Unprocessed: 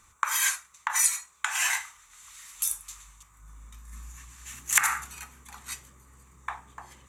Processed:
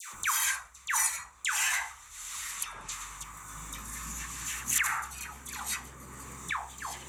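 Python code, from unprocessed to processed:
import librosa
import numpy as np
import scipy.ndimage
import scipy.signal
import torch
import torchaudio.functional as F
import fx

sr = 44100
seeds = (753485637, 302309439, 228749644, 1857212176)

y = fx.dispersion(x, sr, late='lows', ms=135.0, hz=1100.0)
y = fx.env_lowpass_down(y, sr, base_hz=2100.0, full_db=-25.5, at=(2.51, 2.92))
y = fx.band_squash(y, sr, depth_pct=70)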